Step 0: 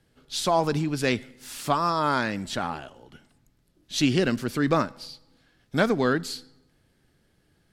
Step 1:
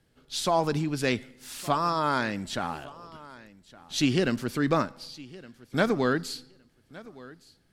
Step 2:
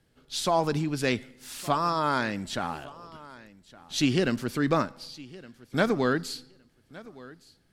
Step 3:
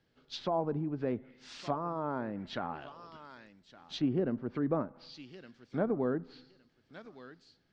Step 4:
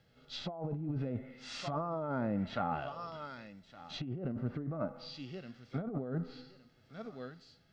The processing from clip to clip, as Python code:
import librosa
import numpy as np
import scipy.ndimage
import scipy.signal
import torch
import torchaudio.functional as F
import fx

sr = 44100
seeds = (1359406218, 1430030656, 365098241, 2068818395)

y1 = fx.echo_feedback(x, sr, ms=1164, feedback_pct=16, wet_db=-20.5)
y1 = F.gain(torch.from_numpy(y1), -2.0).numpy()
y2 = y1
y3 = fx.env_lowpass_down(y2, sr, base_hz=760.0, full_db=-25.0)
y3 = scipy.signal.sosfilt(scipy.signal.butter(4, 5700.0, 'lowpass', fs=sr, output='sos'), y3)
y3 = fx.low_shelf(y3, sr, hz=95.0, db=-9.0)
y3 = F.gain(torch.from_numpy(y3), -4.5).numpy()
y4 = y3 + 0.34 * np.pad(y3, (int(1.5 * sr / 1000.0), 0))[:len(y3)]
y4 = fx.hpss(y4, sr, part='percussive', gain_db=-15)
y4 = fx.over_compress(y4, sr, threshold_db=-41.0, ratio=-1.0)
y4 = F.gain(torch.from_numpy(y4), 4.5).numpy()